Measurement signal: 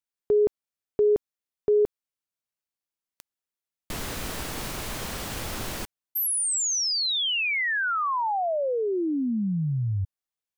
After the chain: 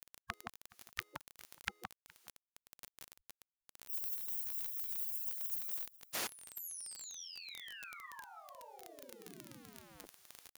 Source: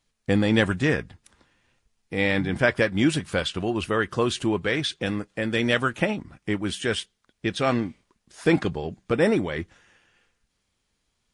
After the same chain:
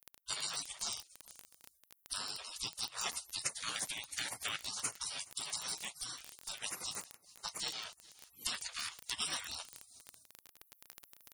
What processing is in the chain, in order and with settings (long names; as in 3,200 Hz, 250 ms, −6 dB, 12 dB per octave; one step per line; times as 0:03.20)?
camcorder AGC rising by 10 dB per second
meter weighting curve A
downward compressor 8 to 1, threshold −27 dBFS
single-tap delay 419 ms −22.5 dB
gate on every frequency bin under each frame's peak −30 dB weak
surface crackle 26 per second −47 dBFS
high-shelf EQ 7,900 Hz +8.5 dB
notch filter 7,900 Hz, Q 16
level +13.5 dB